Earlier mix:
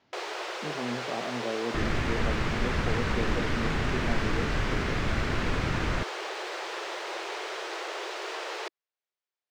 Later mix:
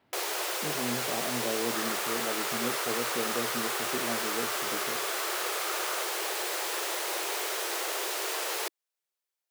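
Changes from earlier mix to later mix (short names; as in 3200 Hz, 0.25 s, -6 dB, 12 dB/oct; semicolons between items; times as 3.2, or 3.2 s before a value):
speech: add air absorption 330 m; second sound: add ladder high-pass 1100 Hz, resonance 70%; master: remove air absorption 150 m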